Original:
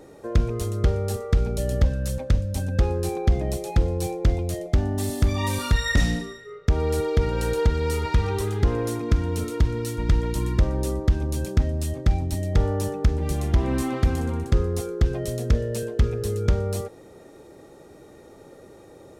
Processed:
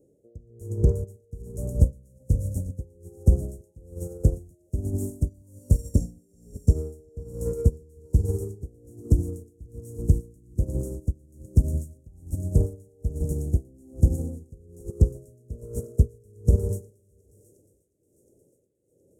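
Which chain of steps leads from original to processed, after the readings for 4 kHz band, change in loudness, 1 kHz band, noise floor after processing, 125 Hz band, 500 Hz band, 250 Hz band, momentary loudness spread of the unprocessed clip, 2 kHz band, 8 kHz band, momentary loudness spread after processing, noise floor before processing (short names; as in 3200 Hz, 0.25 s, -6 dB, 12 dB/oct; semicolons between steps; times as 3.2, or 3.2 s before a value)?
under -25 dB, -2.5 dB, under -25 dB, -65 dBFS, -2.0 dB, -8.0 dB, -5.0 dB, 4 LU, under -40 dB, -8.0 dB, 18 LU, -48 dBFS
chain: regenerating reverse delay 0.313 s, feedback 42%, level -10.5 dB; elliptic band-stop 530–7000 Hz, stop band 40 dB; low shelf 130 Hz -10 dB; on a send: thinning echo 0.359 s, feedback 76%, high-pass 1200 Hz, level -6.5 dB; on the sum: tremolo 1.2 Hz, depth 84%; in parallel at -9.5 dB: soft clip -27.5 dBFS, distortion -10 dB; on the sum: bell 92 Hz +10 dB 2.6 oct; maximiser +8.5 dB; upward expander 2.5:1, over -20 dBFS; gain -4 dB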